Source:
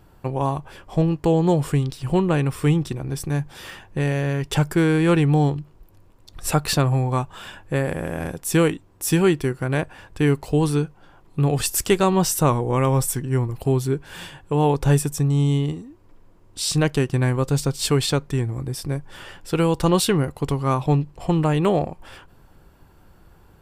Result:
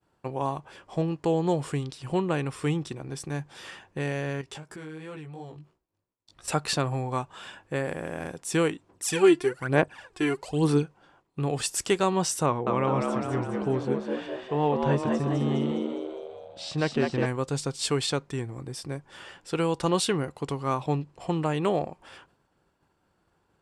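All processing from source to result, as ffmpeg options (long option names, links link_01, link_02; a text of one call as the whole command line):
ffmpeg -i in.wav -filter_complex "[0:a]asettb=1/sr,asplit=3[link_01][link_02][link_03];[link_01]atrim=end=4.414[link_04];[link_02]atrim=start=4.41:end=6.48,asetpts=PTS-STARTPTS,afade=type=in:duration=0.004:curve=qsin,afade=type=out:start_time=2.066:duration=0.004:curve=qsin,flanger=delay=15.5:depth=4.3:speed=2.9,acompressor=threshold=-32dB:ratio=4:attack=3.2:release=140:knee=1:detection=peak[link_05];[link_03]atrim=start=6.476[link_06];[link_04][link_05]acrossfade=duration=0.004:curve1=hsin:curve2=qsin[link_07];[link_07][link_06]acrossfade=duration=0.004:curve1=qsin:curve2=hsin,asettb=1/sr,asplit=3[link_08][link_09][link_10];[link_08]atrim=end=8.894[link_11];[link_09]atrim=start=8.89:end=10.83,asetpts=PTS-STARTPTS,afade=type=in:duration=0.004:curve=qsin,afade=type=out:start_time=1.936:duration=0.004:curve=qsin,lowshelf=frequency=170:gain=-6,aphaser=in_gain=1:out_gain=1:delay=3:decay=0.7:speed=1.1:type=sinusoidal[link_12];[link_10]atrim=start=10.826[link_13];[link_11][link_12]acrossfade=duration=0.004:curve1=hsin:curve2=qsin[link_14];[link_14][link_13]acrossfade=duration=0.004:curve1=qsin:curve2=hsin,asettb=1/sr,asplit=3[link_15][link_16][link_17];[link_15]atrim=end=12.464[link_18];[link_16]atrim=start=12.46:end=17.26,asetpts=PTS-STARTPTS,afade=type=in:duration=0.004:curve=qsin,afade=type=out:start_time=4.796:duration=0.004:curve=qsin,lowpass=3200,asplit=8[link_19][link_20][link_21][link_22][link_23][link_24][link_25][link_26];[link_20]adelay=205,afreqshift=83,volume=-4dB[link_27];[link_21]adelay=410,afreqshift=166,volume=-9.5dB[link_28];[link_22]adelay=615,afreqshift=249,volume=-15dB[link_29];[link_23]adelay=820,afreqshift=332,volume=-20.5dB[link_30];[link_24]adelay=1025,afreqshift=415,volume=-26.1dB[link_31];[link_25]adelay=1230,afreqshift=498,volume=-31.6dB[link_32];[link_26]adelay=1435,afreqshift=581,volume=-37.1dB[link_33];[link_19][link_27][link_28][link_29][link_30][link_31][link_32][link_33]amix=inputs=8:normalize=0,atrim=end_sample=211680[link_34];[link_17]atrim=start=17.256[link_35];[link_18][link_34]acrossfade=duration=0.004:curve1=hsin:curve2=qsin[link_36];[link_36][link_35]acrossfade=duration=0.004:curve1=qsin:curve2=hsin,highpass=frequency=240:poles=1,agate=range=-33dB:threshold=-50dB:ratio=3:detection=peak,lowpass=frequency=9500:width=0.5412,lowpass=frequency=9500:width=1.3066,volume=-4.5dB" out.wav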